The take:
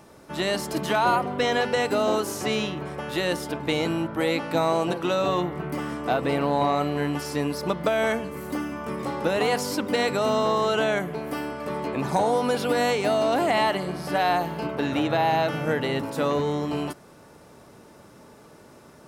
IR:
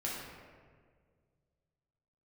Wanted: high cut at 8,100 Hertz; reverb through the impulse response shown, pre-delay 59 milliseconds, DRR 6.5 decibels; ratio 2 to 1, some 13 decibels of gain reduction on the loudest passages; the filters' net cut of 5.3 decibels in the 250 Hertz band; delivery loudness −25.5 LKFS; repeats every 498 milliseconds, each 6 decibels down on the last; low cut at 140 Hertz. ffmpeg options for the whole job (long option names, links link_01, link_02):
-filter_complex "[0:a]highpass=140,lowpass=8100,equalizer=frequency=250:width_type=o:gain=-6.5,acompressor=threshold=-44dB:ratio=2,aecho=1:1:498|996|1494|1992|2490|2988:0.501|0.251|0.125|0.0626|0.0313|0.0157,asplit=2[link_01][link_02];[1:a]atrim=start_sample=2205,adelay=59[link_03];[link_02][link_03]afir=irnorm=-1:irlink=0,volume=-10dB[link_04];[link_01][link_04]amix=inputs=2:normalize=0,volume=10.5dB"